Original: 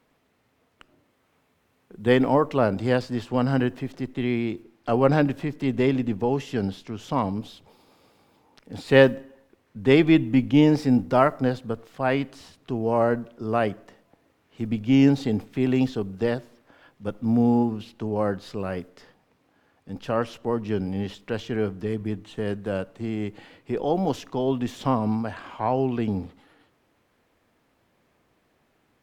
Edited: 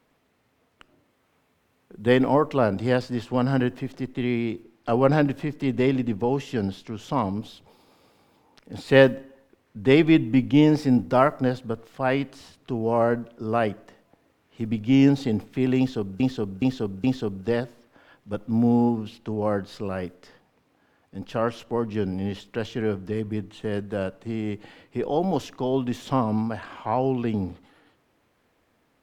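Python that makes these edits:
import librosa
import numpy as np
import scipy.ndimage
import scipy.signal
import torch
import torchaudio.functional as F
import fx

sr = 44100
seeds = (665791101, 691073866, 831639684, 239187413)

y = fx.edit(x, sr, fx.repeat(start_s=15.78, length_s=0.42, count=4), tone=tone)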